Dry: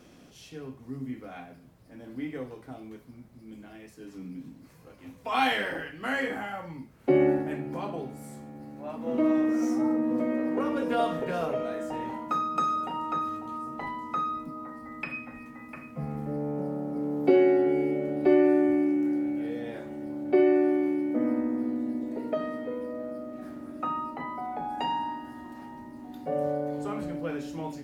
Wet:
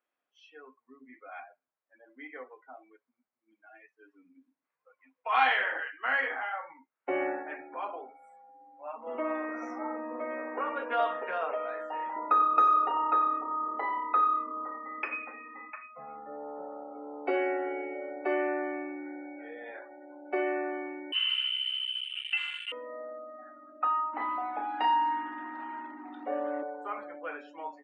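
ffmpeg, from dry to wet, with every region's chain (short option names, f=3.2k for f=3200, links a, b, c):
-filter_complex "[0:a]asettb=1/sr,asplit=3[a][b][c];[a]atrim=end=12.164[d];[b]atrim=start=12.16:end=15.7,asetpts=PTS-STARTPTS,afade=t=in:d=0.004:c=qsin,afade=t=out:st=3.536:d=0.004:c=qsin,equalizer=f=390:w=1.6:g=15,asplit=5[e][f][g][h][i];[f]adelay=91,afreqshift=-35,volume=-11dB[j];[g]adelay=182,afreqshift=-70,volume=-20.6dB[k];[h]adelay=273,afreqshift=-105,volume=-30.3dB[l];[i]adelay=364,afreqshift=-140,volume=-39.9dB[m];[e][j][k][l][m]amix=inputs=5:normalize=0,atrim=end_sample=156114[n];[c]atrim=start=15.696[o];[d][n]acrossfade=d=0.004:c1=hsin:c2=qsin[p];[p][o]acrossfade=d=0.004:c1=qsin:c2=hsin,asettb=1/sr,asplit=3[q][r][s];[q]atrim=end=21.124[t];[r]atrim=start=21.12:end=22.72,asetpts=PTS-STARTPTS,afade=t=in:d=0.004:c=qsin,afade=t=out:st=1.596:d=0.004:c=qsin,adynamicsmooth=sensitivity=6.5:basefreq=710,lowpass=f=2.8k:t=q:w=0.5098,lowpass=f=2.8k:t=q:w=0.6013,lowpass=f=2.8k:t=q:w=0.9,lowpass=f=2.8k:t=q:w=2.563,afreqshift=-3300,aeval=exprs='val(0)*gte(abs(val(0)),0.0224)':c=same[u];[s]atrim=start=22.716[v];[t][u]acrossfade=d=0.004:c1=hsin:c2=qsin[w];[w][v]acrossfade=d=0.004:c1=qsin:c2=hsin,asettb=1/sr,asplit=3[x][y][z];[x]atrim=end=24.134[aa];[y]atrim=start=24.13:end=26.63,asetpts=PTS-STARTPTS,afade=t=in:d=0.004:c=qsin,afade=t=out:st=2.496:d=0.004:c=qsin,aeval=exprs='val(0)+0.5*0.00891*sgn(val(0))':c=same,equalizer=f=300:w=4.5:g=13.5,asplit=2[ab][ac];[ac]adelay=33,volume=-8dB[ad];[ab][ad]amix=inputs=2:normalize=0,atrim=end_sample=110250[ae];[z]atrim=start=26.626[af];[aa][ae]acrossfade=d=0.004:c1=hsin:c2=qsin[ag];[ag][af]acrossfade=d=0.004:c1=qsin:c2=hsin,highpass=1k,afftdn=nr=28:nf=-50,lowpass=1.9k,volume=6dB"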